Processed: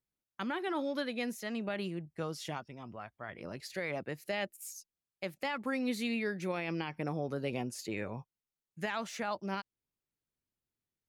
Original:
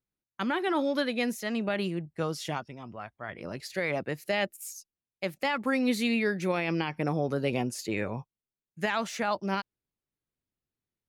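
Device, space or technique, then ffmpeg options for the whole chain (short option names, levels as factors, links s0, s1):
parallel compression: -filter_complex "[0:a]asplit=2[s0][s1];[s1]acompressor=threshold=0.01:ratio=6,volume=0.944[s2];[s0][s2]amix=inputs=2:normalize=0,volume=0.376"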